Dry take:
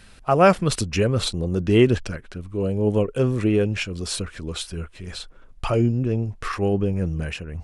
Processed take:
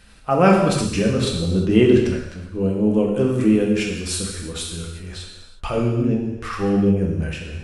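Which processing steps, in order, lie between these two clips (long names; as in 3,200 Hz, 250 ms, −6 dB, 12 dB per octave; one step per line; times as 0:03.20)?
0:03.28–0:05.06: high-shelf EQ 9,500 Hz +12 dB
reverb whose tail is shaped and stops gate 390 ms falling, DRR −1 dB
dynamic equaliser 250 Hz, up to +5 dB, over −28 dBFS, Q 1.1
level −3 dB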